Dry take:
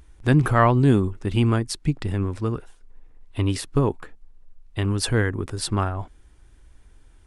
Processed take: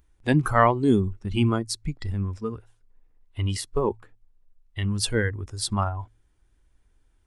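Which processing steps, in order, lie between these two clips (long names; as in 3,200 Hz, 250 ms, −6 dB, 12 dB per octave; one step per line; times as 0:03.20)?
hum removal 54.51 Hz, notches 2
noise reduction from a noise print of the clip's start 12 dB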